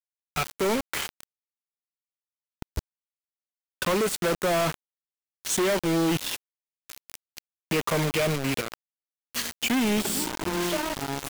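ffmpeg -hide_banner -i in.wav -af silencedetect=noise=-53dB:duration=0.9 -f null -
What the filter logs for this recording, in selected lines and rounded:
silence_start: 1.23
silence_end: 2.62 | silence_duration: 1.39
silence_start: 2.79
silence_end: 3.82 | silence_duration: 1.03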